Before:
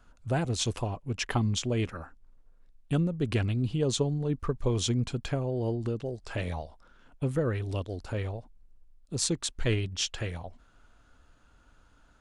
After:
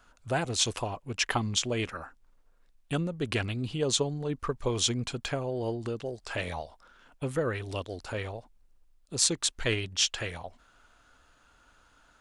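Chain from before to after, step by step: bass shelf 400 Hz -11.5 dB; trim +5 dB

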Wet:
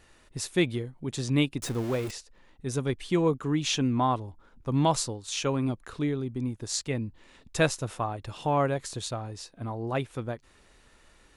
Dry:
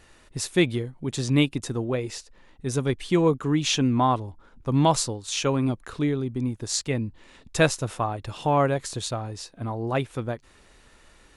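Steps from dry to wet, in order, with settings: 1.62–2.11 s: jump at every zero crossing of -30.5 dBFS; trim -4 dB

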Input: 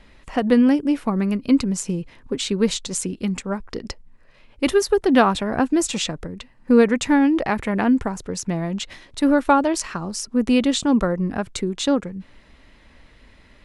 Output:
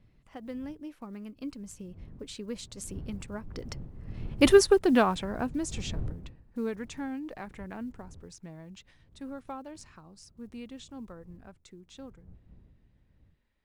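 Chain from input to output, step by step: block-companded coder 7-bit; wind noise 110 Hz -30 dBFS; Doppler pass-by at 4.52 s, 16 m/s, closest 3.1 m; in parallel at -2.5 dB: compression, threshold -43 dBFS, peak gain reduction 27 dB

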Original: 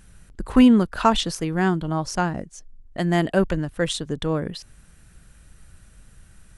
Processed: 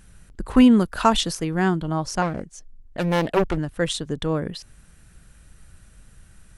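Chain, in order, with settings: 0.71–1.33 s: treble shelf 8.4 kHz +10 dB; 2.22–3.58 s: loudspeaker Doppler distortion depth 0.76 ms

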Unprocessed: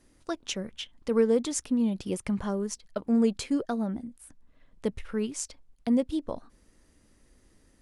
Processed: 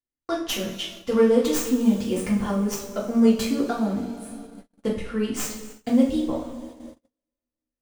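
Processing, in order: tracing distortion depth 0.11 ms; two-slope reverb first 0.45 s, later 3.7 s, from -18 dB, DRR -6 dB; gate -40 dBFS, range -40 dB

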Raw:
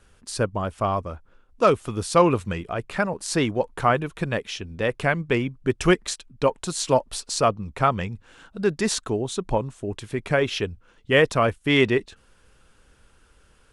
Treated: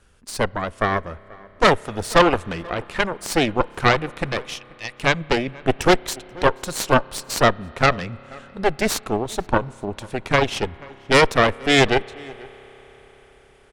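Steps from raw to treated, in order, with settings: 4.54–5.01 s: steep high-pass 1.9 kHz; Chebyshev shaper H 6 -8 dB, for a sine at -3.5 dBFS; echo from a far wall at 83 m, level -23 dB; on a send at -22 dB: reverberation RT60 5.5 s, pre-delay 30 ms; on the sum: loudspeaker Doppler distortion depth 0.11 ms

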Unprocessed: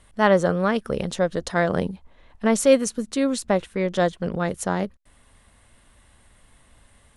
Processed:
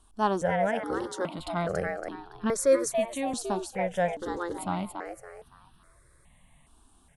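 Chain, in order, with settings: 0.67–1.38 s: high-pass 54 Hz -> 160 Hz 12 dB/octave; frequency-shifting echo 282 ms, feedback 32%, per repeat +120 Hz, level -6 dB; stepped phaser 2.4 Hz 540–2100 Hz; trim -4 dB

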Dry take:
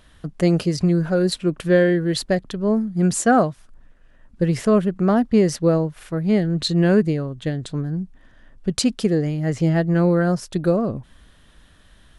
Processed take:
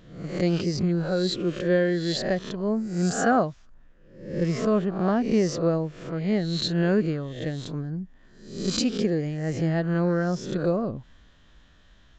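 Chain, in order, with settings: reverse spectral sustain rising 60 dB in 0.62 s; resampled via 16 kHz; trim -6.5 dB

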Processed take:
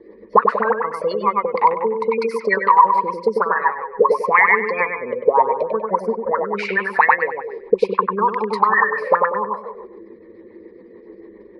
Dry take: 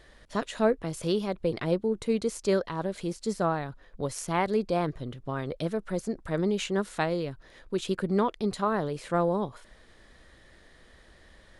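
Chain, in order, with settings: spectral gate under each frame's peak -25 dB strong; auto-wah 310–1800 Hz, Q 18, up, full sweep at -23 dBFS; in parallel at 0 dB: compression, threshold -56 dBFS, peak gain reduction 18 dB; on the sum: bass shelf 190 Hz -10.5 dB; on a send: bucket-brigade echo 97 ms, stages 2048, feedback 42%, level -4 dB; on the sum: rotary cabinet horn 7 Hz; rippled EQ curve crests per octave 0.88, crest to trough 17 dB; loudness maximiser +33.5 dB; trim -1 dB

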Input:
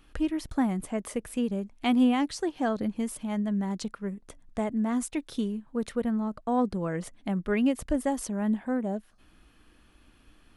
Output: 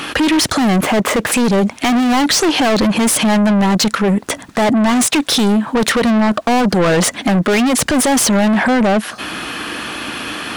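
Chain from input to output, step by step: 0.76–1.32 s: median filter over 9 samples; dynamic bell 6.1 kHz, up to +4 dB, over -52 dBFS, Q 0.99; high-pass 100 Hz 12 dB/octave; bass shelf 180 Hz +5 dB; overdrive pedal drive 34 dB, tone 5.9 kHz, clips at -12 dBFS; loudness maximiser +22 dB; trim -8.5 dB

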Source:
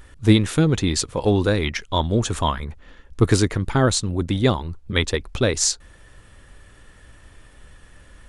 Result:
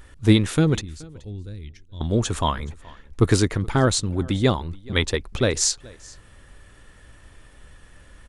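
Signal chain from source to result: 0.81–2.01 s: amplifier tone stack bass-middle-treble 10-0-1; delay 426 ms -23.5 dB; trim -1 dB

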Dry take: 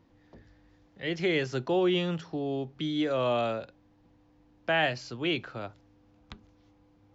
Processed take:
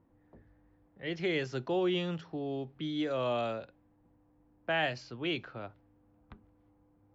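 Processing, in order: level-controlled noise filter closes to 1.4 kHz, open at -23.5 dBFS; trim -4.5 dB

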